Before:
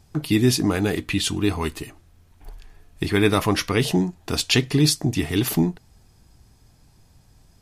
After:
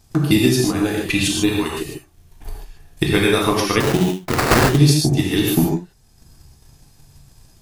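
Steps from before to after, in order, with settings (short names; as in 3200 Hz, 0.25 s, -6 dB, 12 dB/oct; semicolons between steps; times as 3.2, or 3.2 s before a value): transient shaper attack +11 dB, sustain -5 dB; high shelf 4100 Hz +6.5 dB; non-linear reverb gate 0.17 s flat, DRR -2.5 dB; in parallel at -1.5 dB: compressor, threshold -21 dBFS, peak gain reduction 18 dB; 3.8–4.78 on the sum: sample-rate reducer 3300 Hz, jitter 20%; gain -7 dB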